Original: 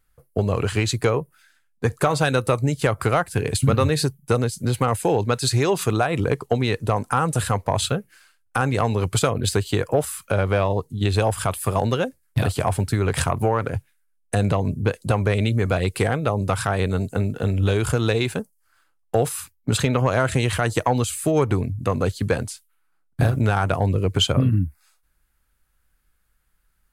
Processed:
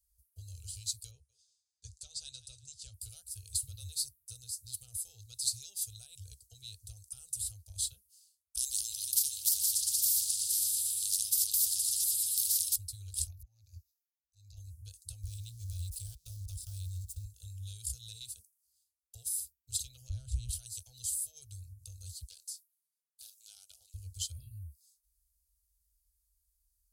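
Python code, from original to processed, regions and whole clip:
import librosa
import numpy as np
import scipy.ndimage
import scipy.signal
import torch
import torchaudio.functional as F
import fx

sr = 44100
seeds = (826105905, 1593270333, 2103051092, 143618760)

y = fx.chain(x, sr, fx.lowpass(hz=7500.0, slope=24),
    fx.echo_thinned(ms=181, feedback_pct=36, hz=480.0, wet_db=-15.0), at=(1.11, 2.94))
y = fx.chain(y, sr, fx.highpass(hz=94.0, slope=12),
    fx.echo_opening(ms=117, hz=200, octaves=2, feedback_pct=70, wet_db=0),
    fx.spectral_comp(ratio=10.0), at=(8.57, 12.76))
y = fx.chain(y, sr, fx.auto_swell(attack_ms=394.0),
    fx.fixed_phaser(hz=2100.0, stages=8), at=(13.27, 14.57))
y = fx.chain(y, sr, fx.zero_step(step_db=-31.5),
    fx.low_shelf(hz=170.0, db=10.0),
    fx.level_steps(step_db=17), at=(15.23, 17.25))
y = fx.chain(y, sr, fx.riaa(side='playback'),
    fx.band_squash(depth_pct=40), at=(20.09, 20.49))
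y = fx.chain(y, sr, fx.dynamic_eq(hz=8900.0, q=2.4, threshold_db=-52.0, ratio=4.0, max_db=-4),
    fx.bessel_highpass(hz=720.0, order=4),
    fx.doppler_dist(depth_ms=0.16), at=(22.23, 23.94))
y = scipy.signal.sosfilt(scipy.signal.butter(2, 52.0, 'highpass', fs=sr, output='sos'), y)
y = fx.dynamic_eq(y, sr, hz=6500.0, q=2.7, threshold_db=-47.0, ratio=4.0, max_db=-5)
y = scipy.signal.sosfilt(scipy.signal.cheby2(4, 50, [150.0, 2100.0], 'bandstop', fs=sr, output='sos'), y)
y = F.gain(torch.from_numpy(y), -3.0).numpy()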